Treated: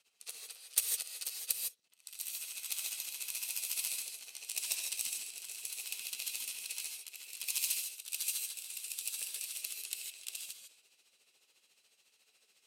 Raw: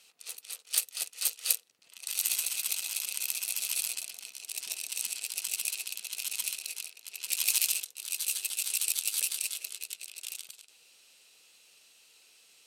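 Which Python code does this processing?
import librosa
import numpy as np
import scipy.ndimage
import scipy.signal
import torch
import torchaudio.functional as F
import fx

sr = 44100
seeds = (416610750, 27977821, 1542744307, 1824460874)

y = fx.rider(x, sr, range_db=5, speed_s=0.5)
y = fx.cheby_harmonics(y, sr, harmonics=(2, 4, 6, 7), levels_db=(-25, -22, -32, -44), full_scale_db=-4.5)
y = y * (1.0 - 0.91 / 2.0 + 0.91 / 2.0 * np.cos(2.0 * np.pi * 14.0 * (np.arange(len(y)) / sr)))
y = fx.rev_gated(y, sr, seeds[0], gate_ms=180, shape='rising', drr_db=1.0)
y = fx.band_widen(y, sr, depth_pct=40)
y = F.gain(torch.from_numpy(y), -4.0).numpy()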